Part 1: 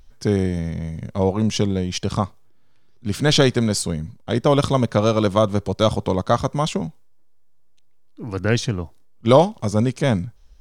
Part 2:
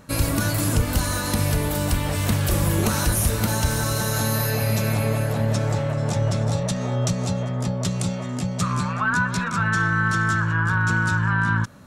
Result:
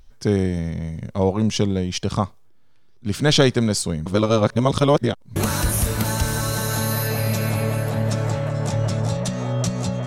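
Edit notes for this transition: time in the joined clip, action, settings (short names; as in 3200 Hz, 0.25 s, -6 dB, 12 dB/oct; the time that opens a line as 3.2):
part 1
4.06–5.36 reverse
5.36 switch to part 2 from 2.79 s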